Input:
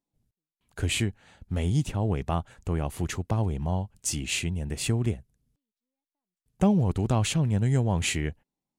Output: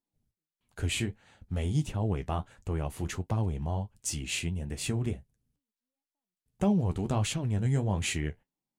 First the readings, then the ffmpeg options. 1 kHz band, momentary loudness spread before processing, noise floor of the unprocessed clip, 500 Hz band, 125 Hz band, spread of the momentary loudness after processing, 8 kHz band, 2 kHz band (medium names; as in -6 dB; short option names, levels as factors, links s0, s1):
-4.0 dB, 8 LU, under -85 dBFS, -4.0 dB, -4.0 dB, 8 LU, -4.0 dB, -4.0 dB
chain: -af "flanger=delay=8:depth=7.1:regen=-48:speed=1.5:shape=triangular"